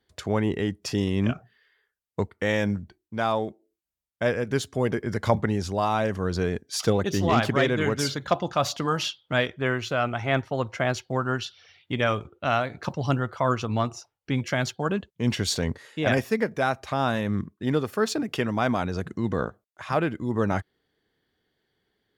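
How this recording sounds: noise floor -83 dBFS; spectral tilt -5.0 dB/octave

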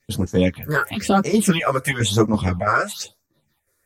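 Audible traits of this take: phasing stages 6, 1 Hz, lowest notch 200–3300 Hz; chopped level 3 Hz, depth 60%, duty 75%; a shimmering, thickened sound

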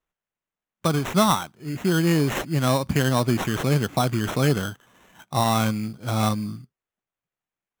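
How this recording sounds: aliases and images of a low sample rate 4.7 kHz, jitter 0%

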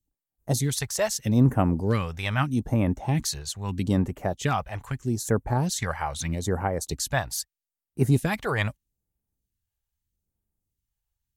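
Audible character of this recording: phasing stages 2, 0.79 Hz, lowest notch 240–3900 Hz

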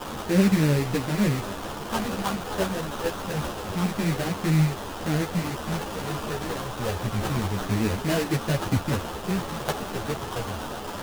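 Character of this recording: a quantiser's noise floor 6-bit, dither triangular; phasing stages 2, 0.27 Hz, lowest notch 220–1600 Hz; aliases and images of a low sample rate 2.2 kHz, jitter 20%; a shimmering, thickened sound

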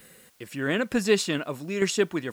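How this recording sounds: tremolo saw down 1.1 Hz, depth 55%; a quantiser's noise floor 10-bit, dither triangular

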